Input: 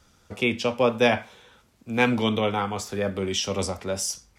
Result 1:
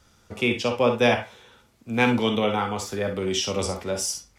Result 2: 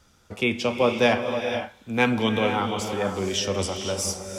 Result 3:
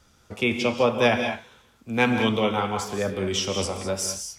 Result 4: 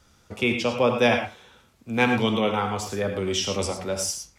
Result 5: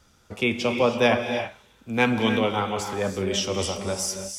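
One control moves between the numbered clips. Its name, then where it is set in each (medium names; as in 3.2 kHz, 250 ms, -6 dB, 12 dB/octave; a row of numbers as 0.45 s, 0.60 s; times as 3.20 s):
gated-style reverb, gate: 80 ms, 530 ms, 230 ms, 130 ms, 350 ms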